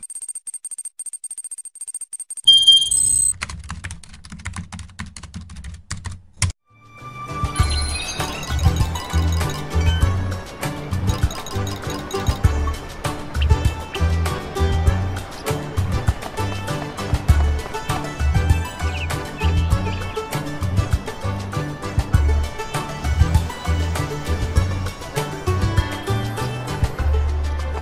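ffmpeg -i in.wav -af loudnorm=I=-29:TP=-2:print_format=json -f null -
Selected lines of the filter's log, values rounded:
"input_i" : "-21.1",
"input_tp" : "-1.8",
"input_lra" : "8.0",
"input_thresh" : "-31.6",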